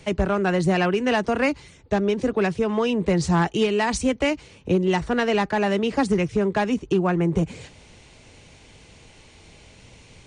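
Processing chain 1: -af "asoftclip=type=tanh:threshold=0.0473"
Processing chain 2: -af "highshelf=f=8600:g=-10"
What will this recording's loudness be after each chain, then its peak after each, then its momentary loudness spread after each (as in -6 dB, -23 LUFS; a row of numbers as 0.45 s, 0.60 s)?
-30.5 LUFS, -22.5 LUFS; -26.5 dBFS, -11.0 dBFS; 20 LU, 4 LU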